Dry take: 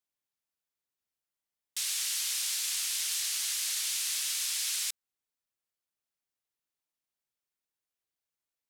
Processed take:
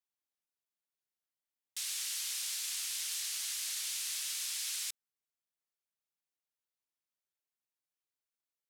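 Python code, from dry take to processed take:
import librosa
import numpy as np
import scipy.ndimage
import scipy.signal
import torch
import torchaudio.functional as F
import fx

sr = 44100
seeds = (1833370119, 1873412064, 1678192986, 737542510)

y = fx.low_shelf(x, sr, hz=190.0, db=-6.5)
y = F.gain(torch.from_numpy(y), -5.5).numpy()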